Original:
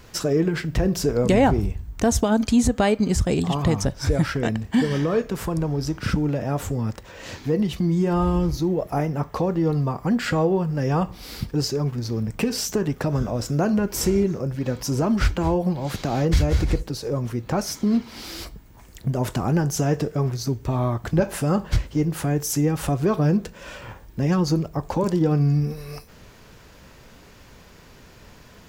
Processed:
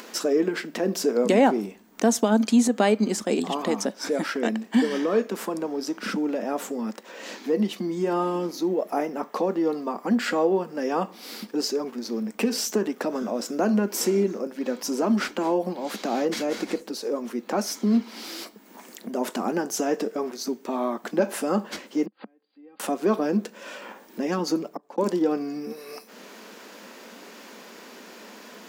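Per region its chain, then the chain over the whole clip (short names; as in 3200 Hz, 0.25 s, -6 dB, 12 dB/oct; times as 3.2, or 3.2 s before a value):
22.06–22.8 comb 3.8 ms, depth 52% + flipped gate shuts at -19 dBFS, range -40 dB + brick-wall FIR low-pass 4900 Hz
24.38–24.98 comb 6.9 ms, depth 34% + auto swell 0.665 s + mismatched tape noise reduction decoder only
whole clip: elliptic high-pass 210 Hz, stop band 40 dB; upward compressor, threshold -36 dBFS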